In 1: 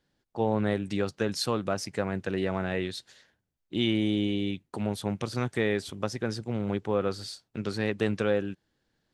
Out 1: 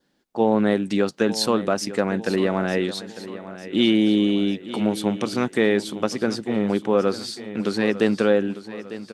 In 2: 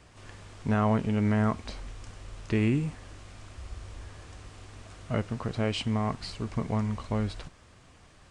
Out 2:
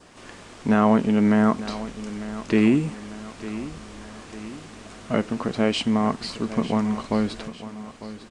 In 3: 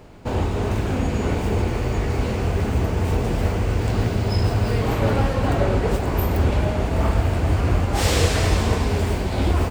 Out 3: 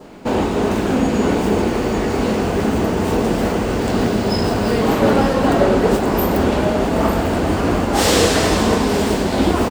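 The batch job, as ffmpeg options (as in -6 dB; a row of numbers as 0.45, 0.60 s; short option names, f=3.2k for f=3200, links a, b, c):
-af "lowshelf=f=150:t=q:w=1.5:g=-10.5,aecho=1:1:900|1800|2700|3600|4500:0.188|0.0961|0.049|0.025|0.0127,adynamicequalizer=threshold=0.00398:dfrequency=2300:dqfactor=3.4:tfrequency=2300:tqfactor=3.4:attack=5:release=100:ratio=0.375:range=2:mode=cutabove:tftype=bell,volume=7dB"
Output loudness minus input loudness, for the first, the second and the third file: +8.0, +6.5, +4.5 LU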